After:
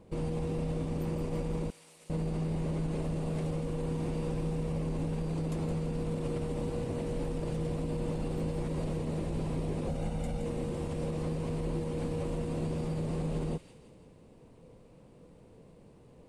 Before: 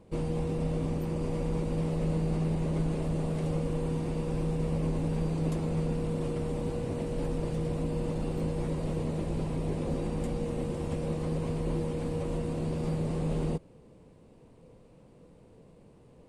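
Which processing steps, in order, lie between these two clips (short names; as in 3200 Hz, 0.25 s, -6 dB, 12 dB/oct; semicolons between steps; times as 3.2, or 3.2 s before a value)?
9.88–10.42 comb 1.4 ms, depth 59%; limiter -25.5 dBFS, peak gain reduction 6.5 dB; 1.7–2.1 differentiator; thin delay 0.168 s, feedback 51%, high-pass 2000 Hz, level -8 dB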